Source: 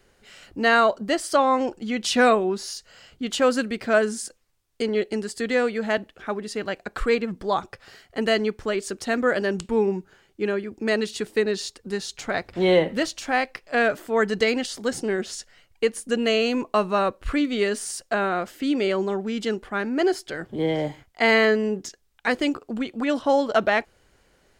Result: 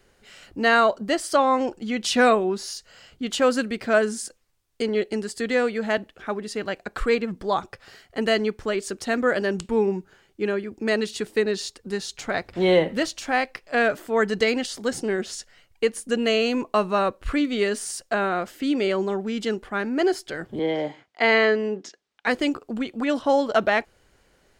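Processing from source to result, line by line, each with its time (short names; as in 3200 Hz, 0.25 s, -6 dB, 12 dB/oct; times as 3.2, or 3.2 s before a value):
20.59–22.27 BPF 240–5000 Hz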